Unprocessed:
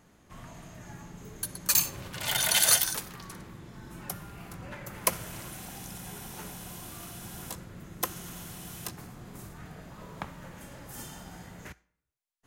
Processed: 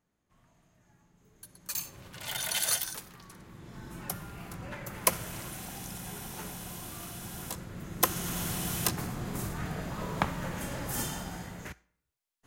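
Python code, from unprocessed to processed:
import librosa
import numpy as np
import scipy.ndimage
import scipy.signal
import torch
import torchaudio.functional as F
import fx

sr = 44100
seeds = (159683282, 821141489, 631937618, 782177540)

y = fx.gain(x, sr, db=fx.line((1.13, -19.5), (2.1, -7.0), (3.36, -7.0), (3.76, 1.0), (7.5, 1.0), (8.47, 9.5), (10.95, 9.5), (11.69, 2.0)))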